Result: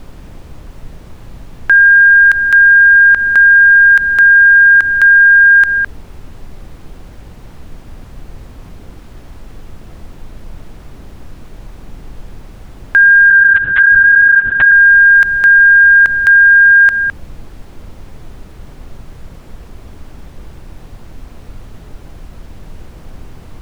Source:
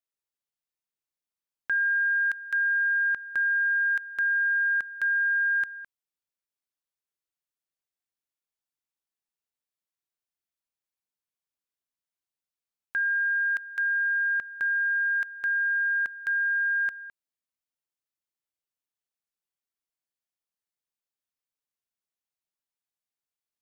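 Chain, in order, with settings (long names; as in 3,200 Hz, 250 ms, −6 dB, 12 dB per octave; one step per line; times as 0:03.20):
downward compressor, threshold −27 dBFS, peak gain reduction 4 dB
background noise brown −57 dBFS
0:13.30–0:14.72: linear-prediction vocoder at 8 kHz whisper
boost into a limiter +28.5 dB
level −1 dB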